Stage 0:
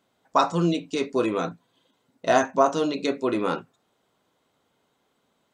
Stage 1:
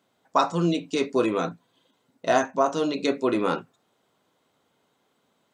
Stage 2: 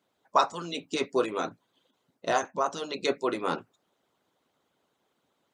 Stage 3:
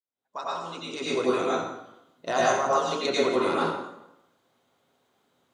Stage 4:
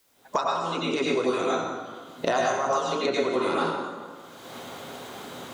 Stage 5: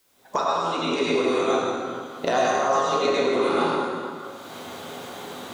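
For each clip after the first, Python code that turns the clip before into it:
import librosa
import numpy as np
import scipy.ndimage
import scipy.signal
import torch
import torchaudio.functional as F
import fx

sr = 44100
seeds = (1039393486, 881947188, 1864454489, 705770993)

y1 = fx.rider(x, sr, range_db=10, speed_s=0.5)
y1 = scipy.signal.sosfilt(scipy.signal.butter(2, 83.0, 'highpass', fs=sr, output='sos'), y1)
y2 = fx.hpss(y1, sr, part='harmonic', gain_db=-18)
y3 = fx.fade_in_head(y2, sr, length_s=1.48)
y3 = fx.rev_plate(y3, sr, seeds[0], rt60_s=0.86, hf_ratio=0.8, predelay_ms=80, drr_db=-7.0)
y3 = F.gain(torch.from_numpy(y3), -2.5).numpy()
y4 = fx.band_squash(y3, sr, depth_pct=100)
y5 = fx.rev_plate(y4, sr, seeds[1], rt60_s=1.9, hf_ratio=0.85, predelay_ms=0, drr_db=0.5)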